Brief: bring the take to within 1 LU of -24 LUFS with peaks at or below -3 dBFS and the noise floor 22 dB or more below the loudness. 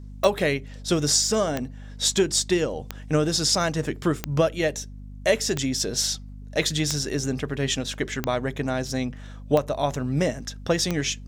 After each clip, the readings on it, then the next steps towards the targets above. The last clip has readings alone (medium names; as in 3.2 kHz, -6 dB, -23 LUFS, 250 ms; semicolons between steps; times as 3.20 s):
clicks found 9; hum 50 Hz; highest harmonic 250 Hz; hum level -36 dBFS; loudness -24.5 LUFS; peak level -4.5 dBFS; loudness target -24.0 LUFS
-> de-click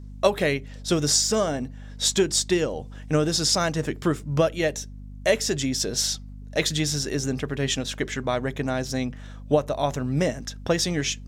clicks found 0; hum 50 Hz; highest harmonic 250 Hz; hum level -36 dBFS
-> hum notches 50/100/150/200/250 Hz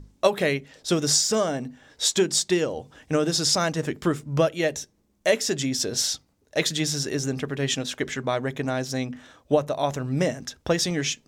hum not found; loudness -25.0 LUFS; peak level -4.5 dBFS; loudness target -24.0 LUFS
-> trim +1 dB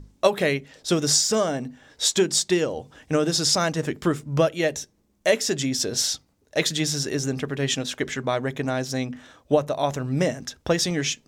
loudness -24.0 LUFS; peak level -3.5 dBFS; noise floor -65 dBFS